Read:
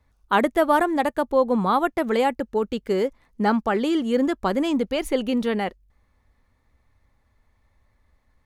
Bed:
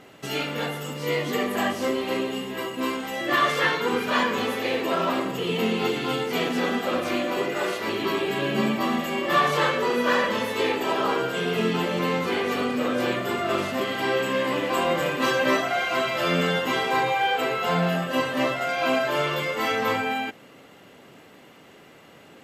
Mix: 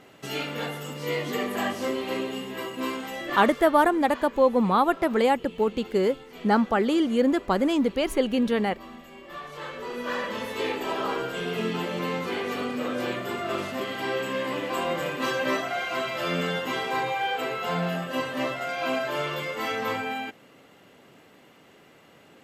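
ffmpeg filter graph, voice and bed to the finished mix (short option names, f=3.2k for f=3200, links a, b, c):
-filter_complex "[0:a]adelay=3050,volume=-0.5dB[a];[1:a]volume=11.5dB,afade=t=out:st=3.06:d=0.56:silence=0.158489,afade=t=in:st=9.48:d=1.18:silence=0.188365[b];[a][b]amix=inputs=2:normalize=0"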